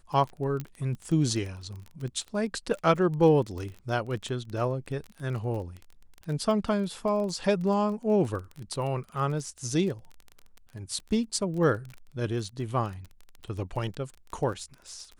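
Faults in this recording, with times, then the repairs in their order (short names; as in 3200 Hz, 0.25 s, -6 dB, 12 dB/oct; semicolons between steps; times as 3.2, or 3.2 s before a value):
crackle 22/s -34 dBFS
0.6 pop -20 dBFS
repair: de-click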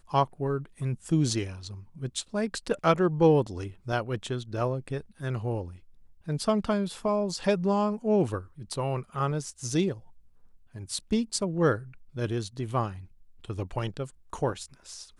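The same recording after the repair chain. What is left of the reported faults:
none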